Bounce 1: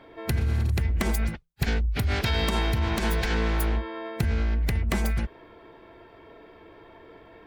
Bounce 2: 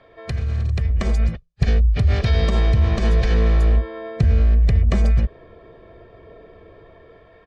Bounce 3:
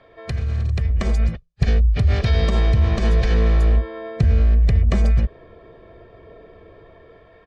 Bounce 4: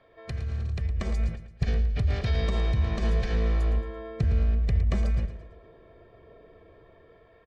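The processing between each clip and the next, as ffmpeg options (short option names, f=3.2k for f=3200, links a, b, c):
-filter_complex "[0:a]lowpass=f=7.1k:w=0.5412,lowpass=f=7.1k:w=1.3066,aecho=1:1:1.7:0.57,acrossover=split=530|1500[a][b][c];[a]dynaudnorm=f=400:g=5:m=10dB[d];[d][b][c]amix=inputs=3:normalize=0,volume=-2dB"
-af anull
-af "aecho=1:1:112|224|336|448:0.266|0.106|0.0426|0.017,volume=-8.5dB"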